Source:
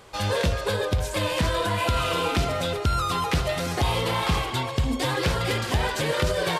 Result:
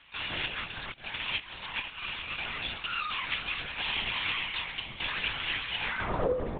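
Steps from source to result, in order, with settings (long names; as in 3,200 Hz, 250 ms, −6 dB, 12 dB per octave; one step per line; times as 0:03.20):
lower of the sound and its delayed copy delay 4.1 ms
0:00.57–0:02.38: compressor whose output falls as the input rises −30 dBFS, ratio −0.5
band-pass filter sweep 2,700 Hz → 320 Hz, 0:05.86–0:06.39
linear-prediction vocoder at 8 kHz whisper
high-frequency loss of the air 75 metres
level +4.5 dB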